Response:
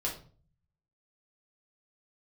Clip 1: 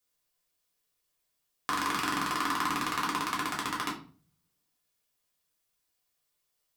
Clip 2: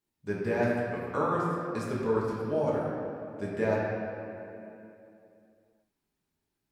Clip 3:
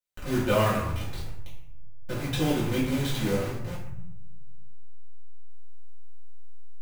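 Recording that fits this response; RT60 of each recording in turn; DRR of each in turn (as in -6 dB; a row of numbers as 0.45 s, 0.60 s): 1; 0.45 s, 2.8 s, 0.75 s; -4.0 dB, -6.5 dB, -9.5 dB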